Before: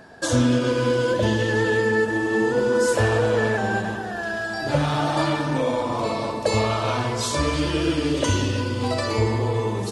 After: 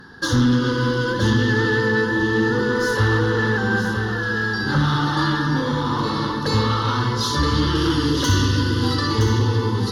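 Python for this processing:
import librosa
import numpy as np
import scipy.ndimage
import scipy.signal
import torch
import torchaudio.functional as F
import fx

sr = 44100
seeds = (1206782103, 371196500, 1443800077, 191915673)

y = fx.high_shelf(x, sr, hz=7300.0, db=11.0, at=(7.75, 8.97))
y = fx.fold_sine(y, sr, drive_db=5, ceiling_db=-7.5)
y = fx.fixed_phaser(y, sr, hz=2400.0, stages=6)
y = y + 10.0 ** (-7.5 / 20.0) * np.pad(y, (int(969 * sr / 1000.0), 0))[:len(y)]
y = y * librosa.db_to_amplitude(-2.5)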